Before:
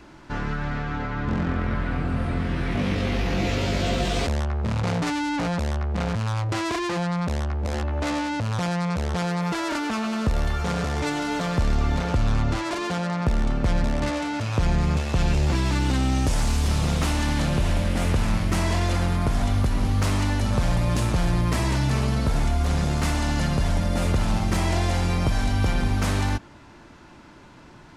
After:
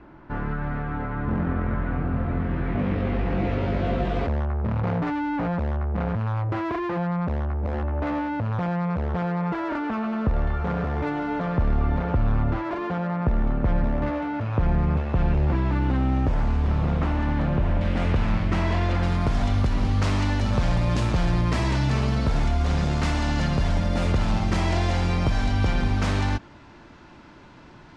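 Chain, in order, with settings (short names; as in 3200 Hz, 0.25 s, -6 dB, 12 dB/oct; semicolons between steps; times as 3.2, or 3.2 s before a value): LPF 1600 Hz 12 dB/oct, from 17.81 s 3000 Hz, from 19.03 s 5300 Hz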